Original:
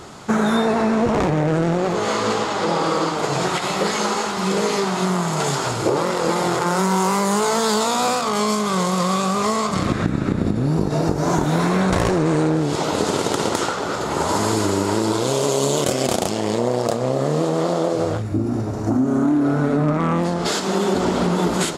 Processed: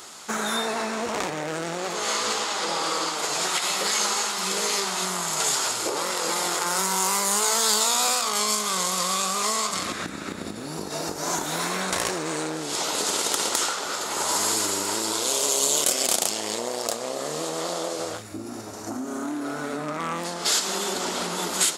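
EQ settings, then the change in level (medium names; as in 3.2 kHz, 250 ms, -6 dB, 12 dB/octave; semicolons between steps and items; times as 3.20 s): tilt EQ +4 dB/octave; peaking EQ 130 Hz -13.5 dB 0.22 oct; -6.0 dB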